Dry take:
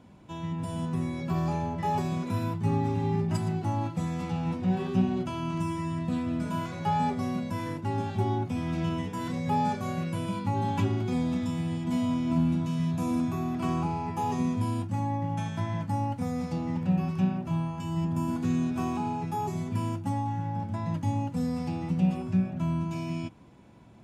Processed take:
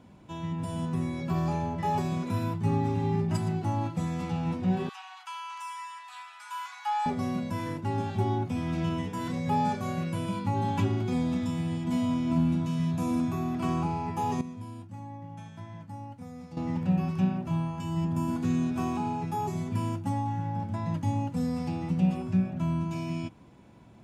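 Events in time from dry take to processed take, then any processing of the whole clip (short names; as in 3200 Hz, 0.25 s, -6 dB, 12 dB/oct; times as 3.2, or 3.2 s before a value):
4.89–7.06 steep high-pass 800 Hz 96 dB/oct
14.41–16.57 gain -12 dB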